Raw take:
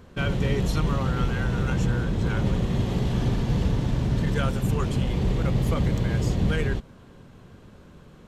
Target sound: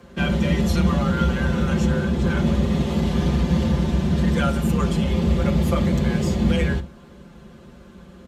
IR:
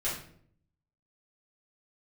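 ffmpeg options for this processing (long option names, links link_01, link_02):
-filter_complex "[0:a]aecho=1:1:6:1,afreqshift=30,asplit=2[link_01][link_02];[1:a]atrim=start_sample=2205,atrim=end_sample=3969[link_03];[link_02][link_03]afir=irnorm=-1:irlink=0,volume=-15dB[link_04];[link_01][link_04]amix=inputs=2:normalize=0"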